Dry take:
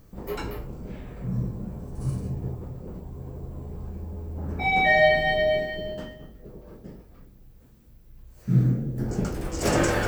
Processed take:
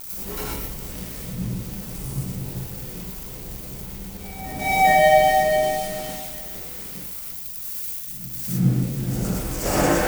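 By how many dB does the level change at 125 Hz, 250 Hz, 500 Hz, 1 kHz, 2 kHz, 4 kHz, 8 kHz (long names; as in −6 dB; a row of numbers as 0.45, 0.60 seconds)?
+0.5 dB, +2.5 dB, +3.5 dB, +8.5 dB, −0.5 dB, +2.0 dB, can't be measured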